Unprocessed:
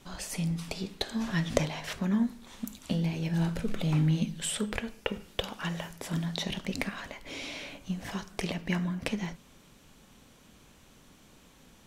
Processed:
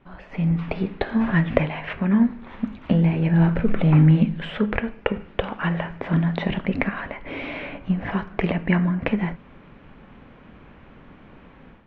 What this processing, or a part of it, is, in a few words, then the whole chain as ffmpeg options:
action camera in a waterproof case: -filter_complex "[0:a]asettb=1/sr,asplit=3[a][b][c];[a]atrim=end=1.474[d];[b]atrim=start=1.47:end=2.28,asetpts=PTS-STARTPTS,afade=t=in:d=0.004:c=qsin,afade=t=out:st=0.806:d=0.004:c=qsin,equalizer=f=2.6k:t=o:w=0.71:g=5.5[e];[c]atrim=start=2.276[f];[d][e]acrossfade=d=0.004:c1=hsin:c2=qsin[g];[g][f]acrossfade=d=0.004:c1=qsin:c2=hsin,lowpass=f=2.3k:w=0.5412,lowpass=f=2.3k:w=1.3066,dynaudnorm=f=260:g=3:m=11.5dB" -ar 48000 -c:a aac -b:a 128k

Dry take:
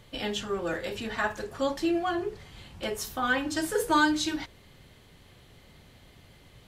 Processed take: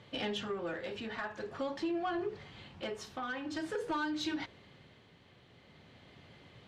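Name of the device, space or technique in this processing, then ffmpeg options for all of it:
AM radio: -af "highpass=110,lowpass=4k,acompressor=threshold=-30dB:ratio=6,asoftclip=type=tanh:threshold=-26dB,tremolo=f=0.47:d=0.4"

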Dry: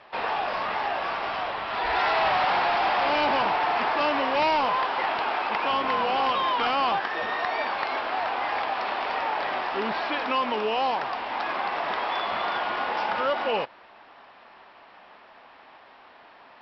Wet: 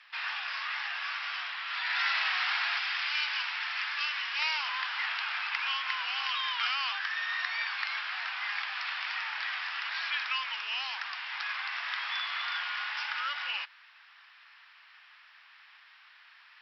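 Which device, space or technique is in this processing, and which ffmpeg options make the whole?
headphones lying on a table: -filter_complex "[0:a]highpass=f=1.5k:w=0.5412,highpass=f=1.5k:w=1.3066,equalizer=f=5.2k:t=o:w=0.38:g=4,asettb=1/sr,asplit=3[a][b][c];[a]atrim=end=2.794[d];[b]atrim=start=2.79:end=4.39,asetpts=PTS-STARTPTS,afade=t=in:d=0.004:c=qsin,afade=t=out:st=1.596:d=0.004:c=qsin,highpass=f=1.4k:p=1[e];[c]atrim=start=4.386[f];[d][e]acrossfade=d=0.004:c1=hsin:c2=qsin[g];[g][f]acrossfade=d=0.004:c1=qsin:c2=hsin"

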